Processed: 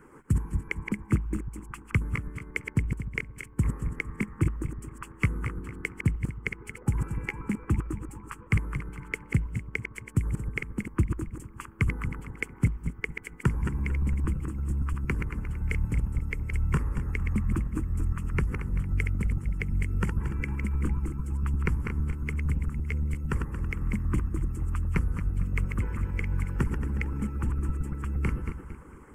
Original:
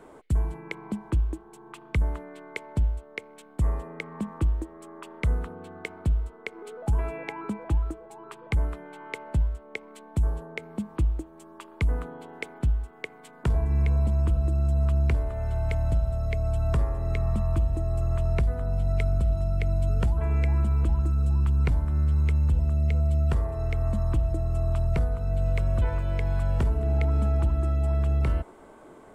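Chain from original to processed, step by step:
feedback delay that plays each chunk backwards 114 ms, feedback 60%, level −5.5 dB
harmonic and percussive parts rebalanced harmonic −16 dB
phaser with its sweep stopped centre 1,600 Hz, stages 4
level +6 dB

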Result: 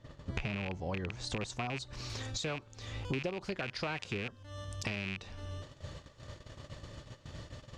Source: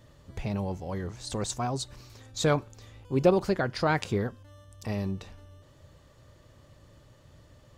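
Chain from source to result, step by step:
loose part that buzzes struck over −34 dBFS, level −20 dBFS
noise gate −54 dBFS, range −14 dB
high-shelf EQ 2,400 Hz +2 dB, from 0:01.93 +10 dB
downward compressor 20 to 1, threshold −42 dBFS, peak gain reduction 28 dB
high-frequency loss of the air 100 metres
level +9.5 dB

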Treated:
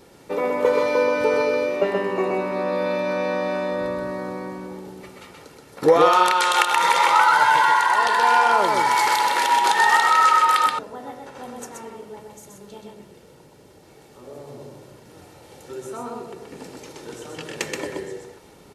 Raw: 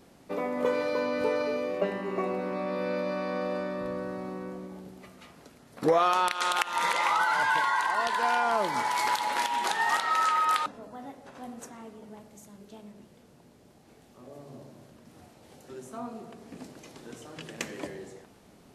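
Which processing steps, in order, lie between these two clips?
low-shelf EQ 77 Hz −6 dB
comb filter 2.2 ms, depth 43%
single-tap delay 127 ms −3.5 dB
level +6.5 dB

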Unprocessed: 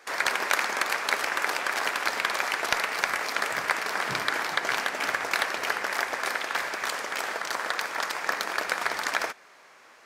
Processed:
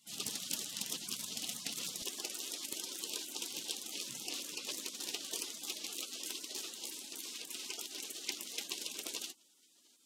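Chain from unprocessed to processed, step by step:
high-pass filter 140 Hz 12 dB per octave, from 0:02.02 500 Hz
gate on every frequency bin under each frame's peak −20 dB weak
high-shelf EQ 5,500 Hz −5 dB
highs frequency-modulated by the lows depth 0.18 ms
level +4.5 dB

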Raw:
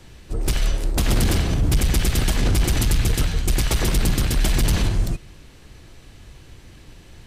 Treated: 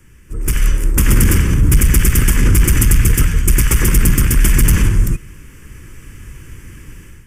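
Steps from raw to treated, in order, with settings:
automatic gain control gain up to 11 dB
high-shelf EQ 6,400 Hz +6.5 dB
phaser with its sweep stopped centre 1,700 Hz, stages 4
level −1 dB

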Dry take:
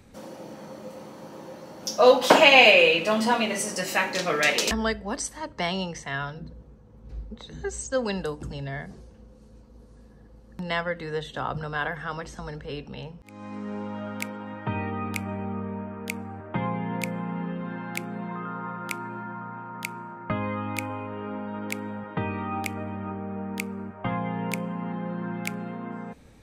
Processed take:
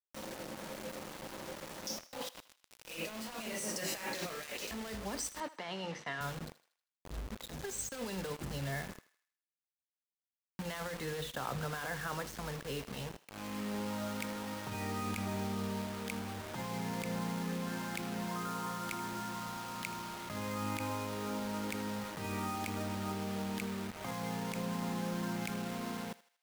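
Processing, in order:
mains-hum notches 60/120/180/240/300/360/420/480 Hz
compressor whose output falls as the input rises −32 dBFS, ratio −1
bit reduction 6 bits
0:05.40–0:06.21: band-pass filter 180–3,800 Hz
feedback echo with a high-pass in the loop 79 ms, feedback 46%, high-pass 720 Hz, level −16 dB
level −8.5 dB

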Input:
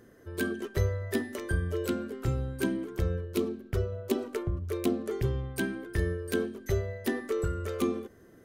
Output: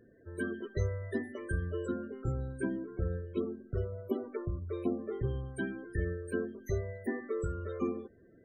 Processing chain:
spectral peaks only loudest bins 32
level −4.5 dB

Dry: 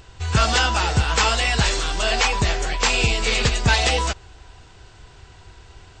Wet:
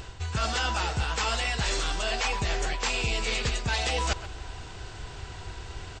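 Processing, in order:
reversed playback
downward compressor 16 to 1, threshold −30 dBFS, peak gain reduction 17.5 dB
reversed playback
far-end echo of a speakerphone 130 ms, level −13 dB
level +5.5 dB

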